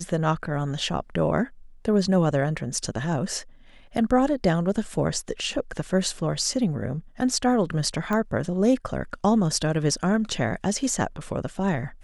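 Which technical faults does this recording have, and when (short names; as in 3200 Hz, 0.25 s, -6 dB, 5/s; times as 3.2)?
8.13 pop -15 dBFS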